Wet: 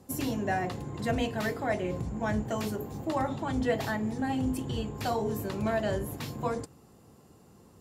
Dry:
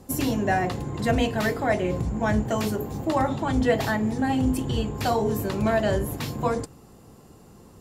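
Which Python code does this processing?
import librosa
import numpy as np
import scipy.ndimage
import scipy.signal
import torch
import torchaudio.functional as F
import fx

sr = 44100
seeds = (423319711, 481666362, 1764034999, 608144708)

y = scipy.signal.sosfilt(scipy.signal.butter(2, 59.0, 'highpass', fs=sr, output='sos'), x)
y = y * 10.0 ** (-6.5 / 20.0)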